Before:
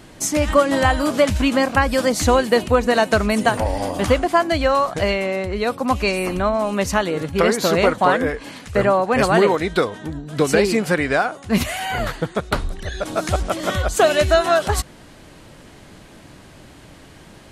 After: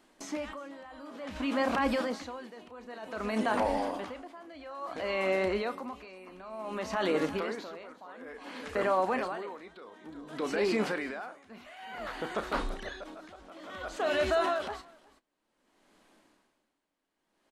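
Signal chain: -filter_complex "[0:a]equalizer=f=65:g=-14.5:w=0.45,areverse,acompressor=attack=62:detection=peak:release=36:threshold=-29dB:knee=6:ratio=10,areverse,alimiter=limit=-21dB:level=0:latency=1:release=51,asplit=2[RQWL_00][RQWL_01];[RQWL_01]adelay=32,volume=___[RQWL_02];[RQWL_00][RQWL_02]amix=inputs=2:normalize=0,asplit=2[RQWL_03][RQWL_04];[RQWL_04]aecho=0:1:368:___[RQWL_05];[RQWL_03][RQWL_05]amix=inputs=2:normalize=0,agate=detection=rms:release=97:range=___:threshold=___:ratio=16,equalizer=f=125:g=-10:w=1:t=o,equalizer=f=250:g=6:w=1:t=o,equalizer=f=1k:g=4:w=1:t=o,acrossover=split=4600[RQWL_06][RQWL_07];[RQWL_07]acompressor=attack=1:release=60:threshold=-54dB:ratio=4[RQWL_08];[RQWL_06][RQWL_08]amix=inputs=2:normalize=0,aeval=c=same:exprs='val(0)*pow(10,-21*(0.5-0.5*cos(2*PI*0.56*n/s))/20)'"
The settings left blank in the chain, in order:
-12.5dB, 0.2, -19dB, -42dB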